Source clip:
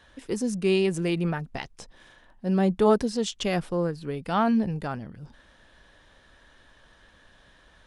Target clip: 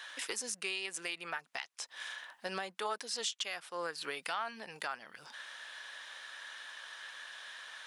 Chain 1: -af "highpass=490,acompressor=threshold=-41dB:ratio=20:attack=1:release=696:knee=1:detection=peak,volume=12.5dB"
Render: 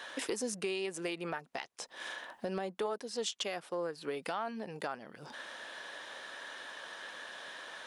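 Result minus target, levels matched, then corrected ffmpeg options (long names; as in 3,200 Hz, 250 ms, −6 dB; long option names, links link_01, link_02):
500 Hz band +6.5 dB
-af "highpass=1300,acompressor=threshold=-41dB:ratio=20:attack=1:release=696:knee=1:detection=peak,volume=12.5dB"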